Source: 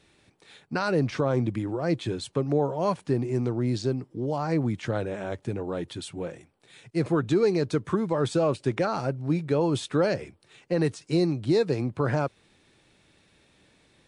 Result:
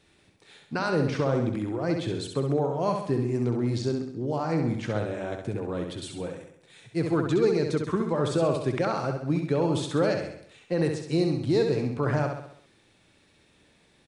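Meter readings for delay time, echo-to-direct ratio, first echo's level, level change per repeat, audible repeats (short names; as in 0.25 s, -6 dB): 66 ms, -4.0 dB, -5.5 dB, -6.0 dB, 6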